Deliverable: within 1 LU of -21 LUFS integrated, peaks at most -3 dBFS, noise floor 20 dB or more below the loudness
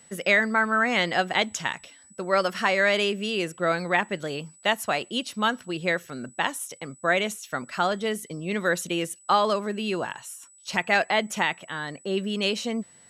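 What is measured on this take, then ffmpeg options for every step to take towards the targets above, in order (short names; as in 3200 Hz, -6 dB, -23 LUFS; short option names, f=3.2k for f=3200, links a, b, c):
steady tone 7900 Hz; tone level -52 dBFS; loudness -25.5 LUFS; peak -8.0 dBFS; loudness target -21.0 LUFS
-> -af "bandreject=f=7.9k:w=30"
-af "volume=4.5dB"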